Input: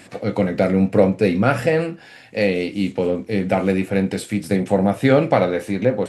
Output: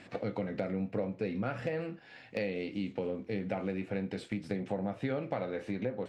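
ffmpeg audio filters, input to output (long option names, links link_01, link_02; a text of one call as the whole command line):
ffmpeg -i in.wav -af "lowpass=4300,agate=range=-8dB:threshold=-33dB:ratio=16:detection=peak,acompressor=threshold=-35dB:ratio=4,asoftclip=type=hard:threshold=-21.5dB" out.wav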